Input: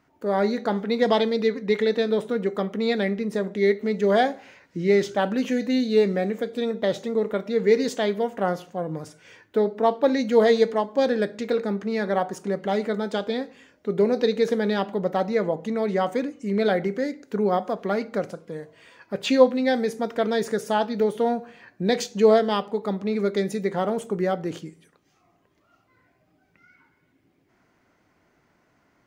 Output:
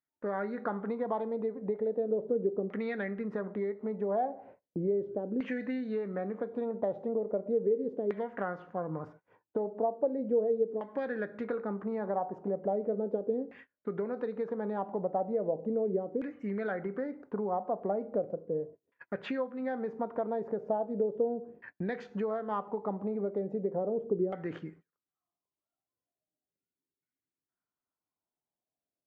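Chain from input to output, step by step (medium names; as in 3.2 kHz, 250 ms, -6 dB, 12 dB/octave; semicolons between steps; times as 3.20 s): gate -47 dBFS, range -31 dB; compression 10:1, threshold -27 dBFS, peak gain reduction 18 dB; LFO low-pass saw down 0.37 Hz 390–2000 Hz; trim -4.5 dB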